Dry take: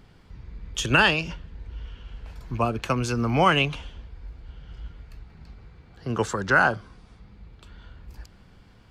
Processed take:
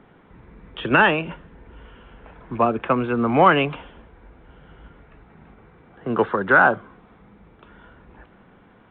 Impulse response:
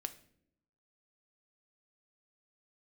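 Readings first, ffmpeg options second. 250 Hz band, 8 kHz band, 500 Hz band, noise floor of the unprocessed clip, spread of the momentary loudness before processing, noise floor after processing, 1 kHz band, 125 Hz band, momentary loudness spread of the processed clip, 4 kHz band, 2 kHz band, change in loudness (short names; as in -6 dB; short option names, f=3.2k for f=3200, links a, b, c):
+4.5 dB, under -40 dB, +6.0 dB, -53 dBFS, 23 LU, -53 dBFS, +5.5 dB, -2.5 dB, 19 LU, -4.5 dB, +3.5 dB, +4.0 dB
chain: -filter_complex "[0:a]acontrast=89,acrossover=split=180 2100:gain=0.141 1 0.141[a][b][c];[a][b][c]amix=inputs=3:normalize=0" -ar 8000 -c:a pcm_alaw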